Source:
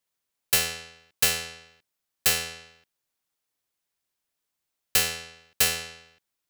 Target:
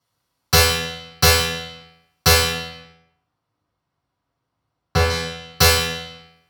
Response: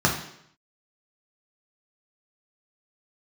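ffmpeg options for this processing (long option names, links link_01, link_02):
-filter_complex "[0:a]asettb=1/sr,asplit=3[link_01][link_02][link_03];[link_01]atrim=end=2.524[link_04];[link_02]atrim=start=2.52:end=5.1,asetpts=PTS-STARTPTS,afade=type=in:duration=0.004:curve=qsin,afade=type=out:start_time=2.576:duration=0.004:curve=qsin,lowpass=frequency=1300:poles=1[link_05];[link_03]atrim=start=5.096[link_06];[link_04][link_05]acrossfade=duration=0.004:curve1=hsin:curve2=qsin[link_07];[link_07][link_06]acrossfade=duration=0.004:curve1=qsin:curve2=hsin[link_08];[1:a]atrim=start_sample=2205,asetrate=34839,aresample=44100[link_09];[link_08][link_09]afir=irnorm=-1:irlink=0,volume=-3.5dB"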